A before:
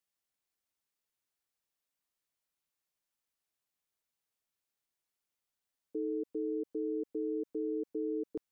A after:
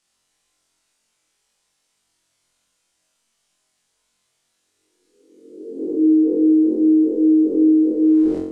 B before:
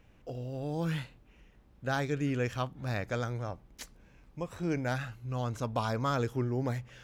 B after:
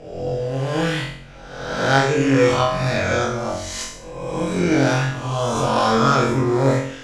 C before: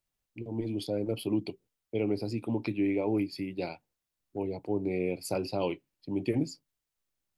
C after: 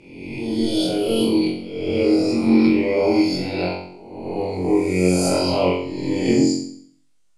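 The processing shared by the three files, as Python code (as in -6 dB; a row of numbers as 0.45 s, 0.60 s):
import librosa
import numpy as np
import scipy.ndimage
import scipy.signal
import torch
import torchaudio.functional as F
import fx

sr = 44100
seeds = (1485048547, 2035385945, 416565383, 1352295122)

y = fx.spec_swells(x, sr, rise_s=1.18)
y = scipy.signal.sosfilt(scipy.signal.butter(4, 9100.0, 'lowpass', fs=sr, output='sos'), y)
y = fx.high_shelf(y, sr, hz=4000.0, db=6.5)
y = fx.room_flutter(y, sr, wall_m=3.8, rt60_s=0.59)
y = fx.room_shoebox(y, sr, seeds[0], volume_m3=200.0, walls='furnished', distance_m=0.71)
y = y * 10.0 ** (-20 / 20.0) / np.sqrt(np.mean(np.square(y)))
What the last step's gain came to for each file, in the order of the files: +11.0 dB, +6.5 dB, +4.0 dB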